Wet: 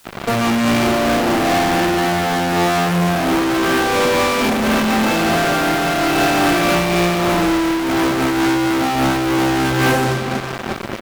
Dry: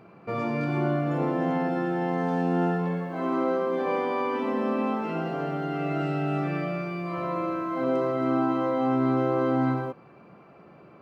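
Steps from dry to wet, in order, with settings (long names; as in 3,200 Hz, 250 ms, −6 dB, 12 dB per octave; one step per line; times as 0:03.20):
0:01.86–0:02.47: high-pass filter 88 Hz 6 dB per octave
0:06.67–0:07.60: low-shelf EQ 460 Hz +4.5 dB
repeating echo 337 ms, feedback 52%, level −16.5 dB
convolution reverb RT60 0.90 s, pre-delay 4 ms, DRR −6 dB
fuzz pedal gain 44 dB, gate −39 dBFS
bit-depth reduction 8 bits, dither triangular
amplitude modulation by smooth noise, depth 55%
level +1 dB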